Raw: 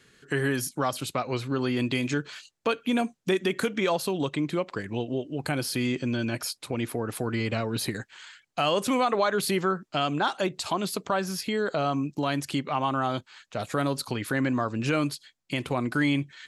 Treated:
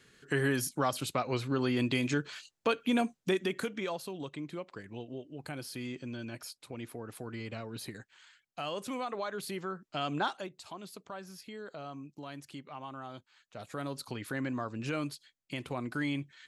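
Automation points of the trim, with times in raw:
3.16 s -3 dB
4.06 s -12.5 dB
9.68 s -12.5 dB
10.23 s -5 dB
10.51 s -17 dB
13.12 s -17 dB
14.13 s -9 dB

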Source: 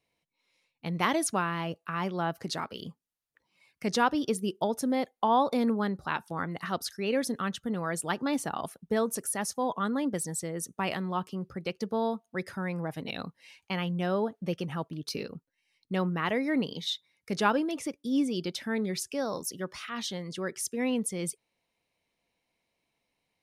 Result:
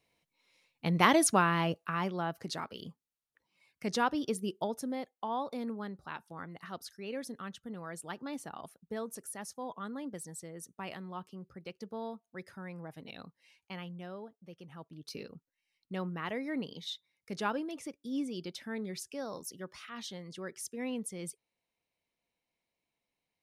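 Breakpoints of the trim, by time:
1.65 s +3 dB
2.25 s -4.5 dB
4.55 s -4.5 dB
5.14 s -11 dB
13.77 s -11 dB
14.44 s -20 dB
15.17 s -8 dB

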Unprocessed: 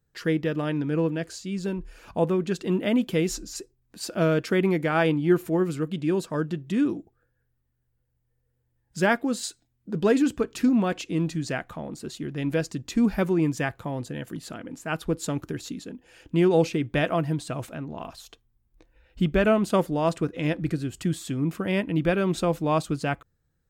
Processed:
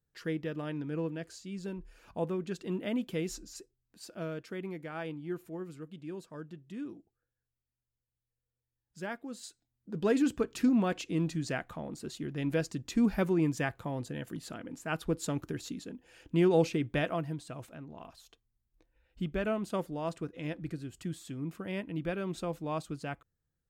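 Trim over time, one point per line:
3.44 s -10 dB
4.43 s -17 dB
9.19 s -17 dB
10.27 s -5 dB
16.86 s -5 dB
17.40 s -11.5 dB

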